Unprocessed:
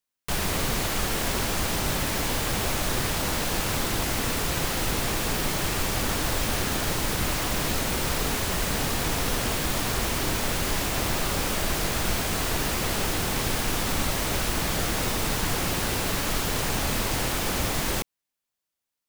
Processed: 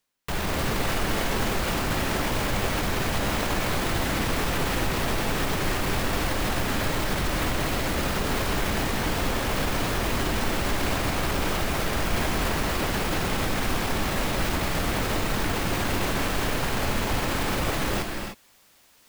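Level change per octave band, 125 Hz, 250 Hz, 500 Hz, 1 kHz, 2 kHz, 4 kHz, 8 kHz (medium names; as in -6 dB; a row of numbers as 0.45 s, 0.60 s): +1.0 dB, +2.0 dB, +2.0 dB, +2.0 dB, +1.5 dB, -2.0 dB, -5.5 dB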